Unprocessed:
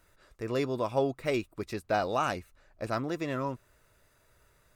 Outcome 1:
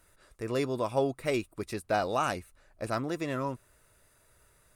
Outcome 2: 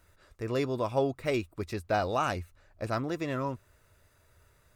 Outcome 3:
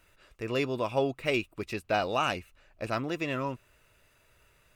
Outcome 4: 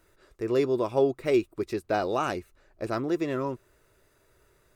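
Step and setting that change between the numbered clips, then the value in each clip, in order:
peaking EQ, frequency: 9.7 kHz, 86 Hz, 2.7 kHz, 370 Hz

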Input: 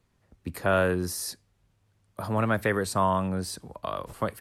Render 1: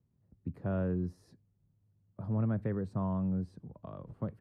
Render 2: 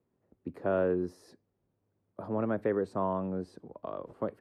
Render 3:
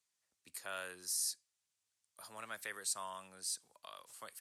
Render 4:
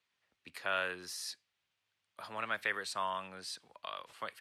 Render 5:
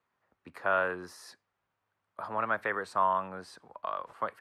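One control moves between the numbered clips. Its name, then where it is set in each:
band-pass filter, frequency: 140 Hz, 360 Hz, 7.7 kHz, 3 kHz, 1.2 kHz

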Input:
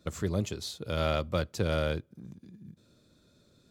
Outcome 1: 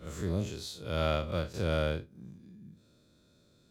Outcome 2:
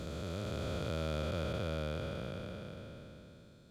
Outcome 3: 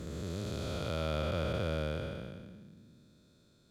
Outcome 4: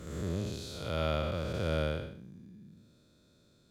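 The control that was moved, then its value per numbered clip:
spectral blur, width: 92 ms, 1790 ms, 718 ms, 280 ms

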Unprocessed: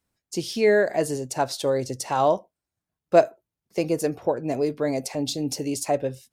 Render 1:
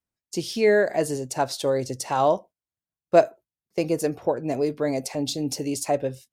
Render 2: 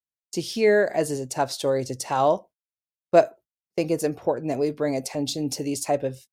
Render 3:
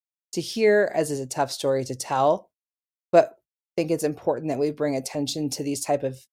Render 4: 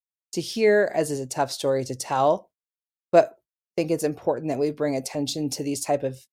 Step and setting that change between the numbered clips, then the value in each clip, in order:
gate, range: -12 dB, -29 dB, -57 dB, -42 dB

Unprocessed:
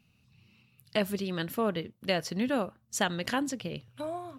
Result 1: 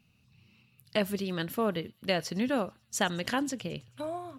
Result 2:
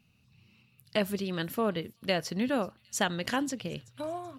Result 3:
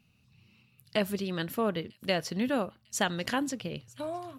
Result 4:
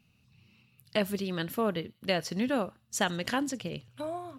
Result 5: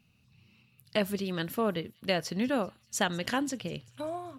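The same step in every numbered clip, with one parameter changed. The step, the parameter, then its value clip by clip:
feedback echo behind a high-pass, time: 109 ms, 380 ms, 949 ms, 61 ms, 195 ms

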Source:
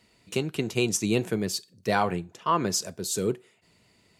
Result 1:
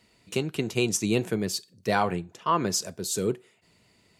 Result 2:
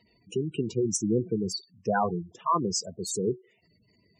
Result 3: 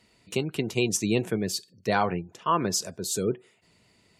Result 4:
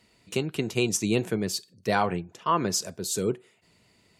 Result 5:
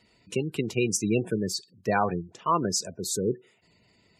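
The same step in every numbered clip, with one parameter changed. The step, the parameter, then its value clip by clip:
spectral gate, under each frame's peak: -60 dB, -10 dB, -35 dB, -45 dB, -20 dB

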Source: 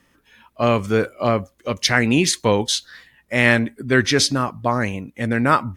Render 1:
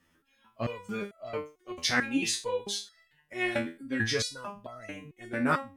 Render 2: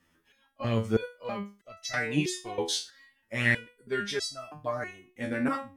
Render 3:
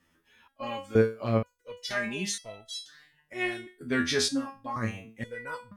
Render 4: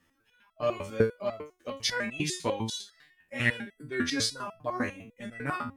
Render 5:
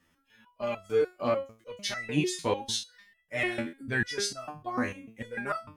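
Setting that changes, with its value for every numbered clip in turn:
resonator arpeggio, rate: 4.5 Hz, 3.1 Hz, 2.1 Hz, 10 Hz, 6.7 Hz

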